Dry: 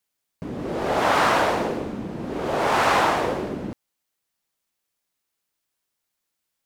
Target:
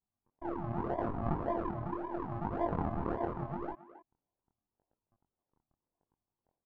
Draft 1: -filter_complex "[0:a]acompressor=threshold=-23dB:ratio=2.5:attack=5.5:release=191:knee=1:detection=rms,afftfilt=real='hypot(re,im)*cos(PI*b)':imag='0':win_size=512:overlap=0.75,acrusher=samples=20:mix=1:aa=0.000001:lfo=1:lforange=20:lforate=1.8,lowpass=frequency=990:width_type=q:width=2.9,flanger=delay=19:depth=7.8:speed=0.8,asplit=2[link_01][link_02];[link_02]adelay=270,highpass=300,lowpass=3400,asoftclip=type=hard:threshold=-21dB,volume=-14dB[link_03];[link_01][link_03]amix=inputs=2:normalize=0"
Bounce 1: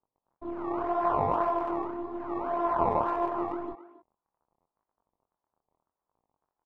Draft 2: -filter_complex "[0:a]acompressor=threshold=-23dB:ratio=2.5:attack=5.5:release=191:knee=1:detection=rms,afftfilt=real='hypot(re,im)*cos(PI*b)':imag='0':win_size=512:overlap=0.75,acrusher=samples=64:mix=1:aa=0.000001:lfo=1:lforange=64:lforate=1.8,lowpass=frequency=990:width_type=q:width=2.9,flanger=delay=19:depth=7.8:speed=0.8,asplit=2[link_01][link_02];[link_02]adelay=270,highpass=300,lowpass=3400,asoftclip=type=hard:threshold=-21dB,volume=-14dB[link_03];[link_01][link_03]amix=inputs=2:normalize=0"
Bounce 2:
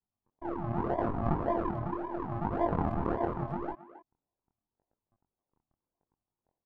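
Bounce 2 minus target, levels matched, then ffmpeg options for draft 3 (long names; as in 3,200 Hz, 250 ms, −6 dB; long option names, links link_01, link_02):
downward compressor: peak gain reduction −4 dB
-filter_complex "[0:a]acompressor=threshold=-29.5dB:ratio=2.5:attack=5.5:release=191:knee=1:detection=rms,afftfilt=real='hypot(re,im)*cos(PI*b)':imag='0':win_size=512:overlap=0.75,acrusher=samples=64:mix=1:aa=0.000001:lfo=1:lforange=64:lforate=1.8,lowpass=frequency=990:width_type=q:width=2.9,flanger=delay=19:depth=7.8:speed=0.8,asplit=2[link_01][link_02];[link_02]adelay=270,highpass=300,lowpass=3400,asoftclip=type=hard:threshold=-21dB,volume=-14dB[link_03];[link_01][link_03]amix=inputs=2:normalize=0"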